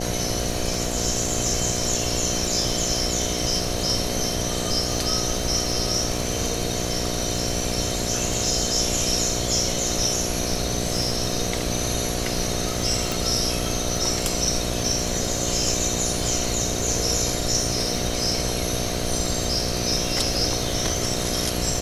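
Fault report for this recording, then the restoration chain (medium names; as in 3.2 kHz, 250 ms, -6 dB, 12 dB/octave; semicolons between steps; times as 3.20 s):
buzz 60 Hz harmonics 12 -29 dBFS
crackle 58 per s -32 dBFS
13.12 s: pop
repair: de-click; de-hum 60 Hz, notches 12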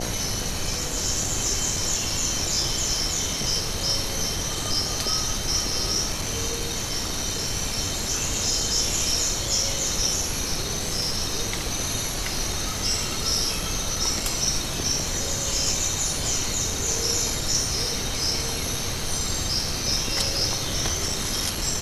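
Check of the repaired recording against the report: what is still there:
13.12 s: pop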